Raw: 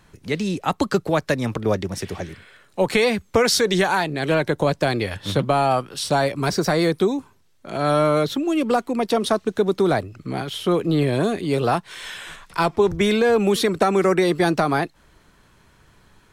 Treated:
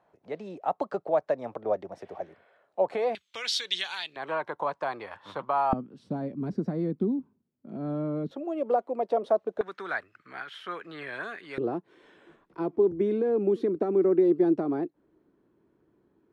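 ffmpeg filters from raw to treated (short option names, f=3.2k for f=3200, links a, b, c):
-af "asetnsamples=n=441:p=0,asendcmd='3.15 bandpass f 3300;4.16 bandpass f 1000;5.73 bandpass f 230;8.31 bandpass f 600;9.61 bandpass f 1600;11.58 bandpass f 330',bandpass=f=670:t=q:w=3.2:csg=0"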